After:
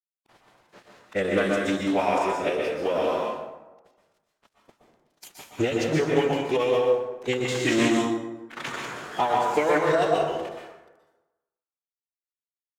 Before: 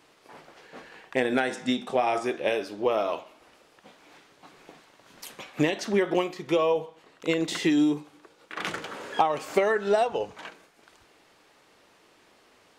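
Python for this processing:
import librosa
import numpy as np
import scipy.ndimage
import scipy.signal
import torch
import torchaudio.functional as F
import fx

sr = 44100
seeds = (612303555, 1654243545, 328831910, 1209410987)

y = fx.dynamic_eq(x, sr, hz=6900.0, q=4.4, threshold_db=-60.0, ratio=4.0, max_db=5)
y = np.sign(y) * np.maximum(np.abs(y) - 10.0 ** (-46.0 / 20.0), 0.0)
y = fx.pitch_keep_formants(y, sr, semitones=-4.5)
y = fx.rev_plate(y, sr, seeds[0], rt60_s=1.1, hf_ratio=0.55, predelay_ms=110, drr_db=-1.0)
y = fx.doppler_dist(y, sr, depth_ms=0.14)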